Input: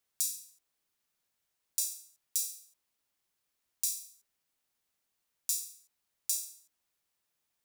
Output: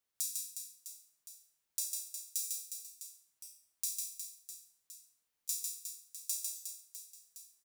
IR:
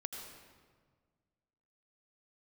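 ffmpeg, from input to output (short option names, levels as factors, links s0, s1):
-af "aecho=1:1:150|360|654|1066|1642:0.631|0.398|0.251|0.158|0.1,volume=0.562"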